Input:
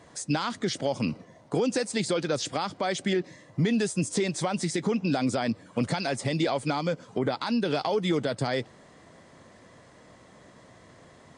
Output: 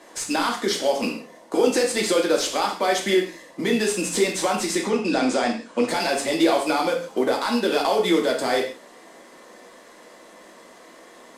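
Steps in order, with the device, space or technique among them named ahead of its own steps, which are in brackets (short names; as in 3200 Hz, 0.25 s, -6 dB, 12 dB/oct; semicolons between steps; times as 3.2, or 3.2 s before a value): early wireless headset (HPF 260 Hz 24 dB/oct; CVSD 64 kbps); 4.75–5.88 LPF 8600 Hz 24 dB/oct; non-linear reverb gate 0.18 s falling, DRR -0.5 dB; gain +4.5 dB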